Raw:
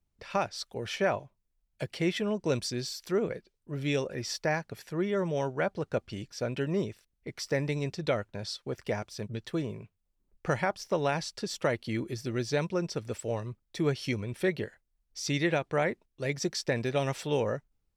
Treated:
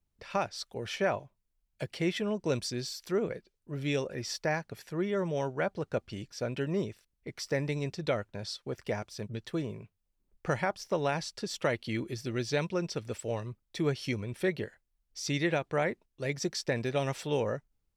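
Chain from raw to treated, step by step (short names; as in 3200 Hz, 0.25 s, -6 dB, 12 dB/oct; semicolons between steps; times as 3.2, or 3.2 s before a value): 11.53–13.82 dynamic EQ 3000 Hz, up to +4 dB, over -49 dBFS, Q 1.1; gain -1.5 dB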